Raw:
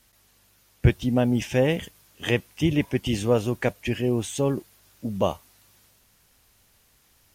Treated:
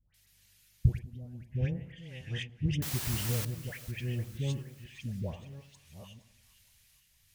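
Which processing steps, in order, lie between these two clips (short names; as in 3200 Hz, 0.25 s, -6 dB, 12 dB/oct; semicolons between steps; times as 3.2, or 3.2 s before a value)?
reverse delay 0.624 s, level -13 dB; treble ducked by the level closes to 500 Hz, closed at -17.5 dBFS; band shelf 550 Hz -15 dB 2.9 oct; 0.93–1.55 compressor 2.5:1, threshold -46 dBFS, peak gain reduction 13.5 dB; random-step tremolo; dispersion highs, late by 0.144 s, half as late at 1100 Hz; 2.82–3.45 requantised 6-bit, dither triangular; split-band echo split 1100 Hz, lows 93 ms, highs 0.464 s, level -14.5 dB; gain -1.5 dB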